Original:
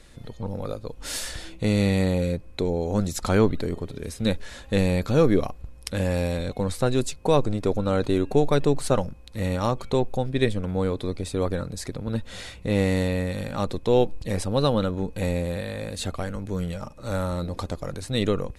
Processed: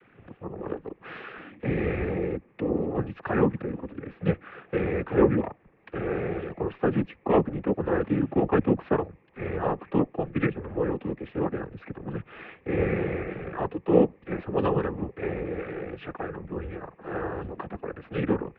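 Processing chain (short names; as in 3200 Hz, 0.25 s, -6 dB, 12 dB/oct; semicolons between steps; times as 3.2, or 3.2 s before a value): noise vocoder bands 12; mistuned SSB -110 Hz 230–2500 Hz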